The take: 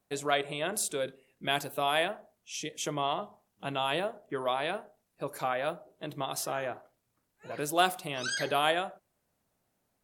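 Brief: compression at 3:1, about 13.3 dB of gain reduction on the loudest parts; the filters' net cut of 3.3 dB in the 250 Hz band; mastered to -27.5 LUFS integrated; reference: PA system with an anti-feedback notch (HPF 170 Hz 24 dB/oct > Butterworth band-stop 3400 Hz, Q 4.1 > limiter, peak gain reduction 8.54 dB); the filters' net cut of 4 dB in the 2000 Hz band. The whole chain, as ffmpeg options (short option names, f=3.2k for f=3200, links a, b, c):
-af "equalizer=f=250:t=o:g=-4,equalizer=f=2k:t=o:g=-5.5,acompressor=threshold=-39dB:ratio=3,highpass=f=170:w=0.5412,highpass=f=170:w=1.3066,asuperstop=centerf=3400:order=8:qfactor=4.1,volume=18.5dB,alimiter=limit=-16dB:level=0:latency=1"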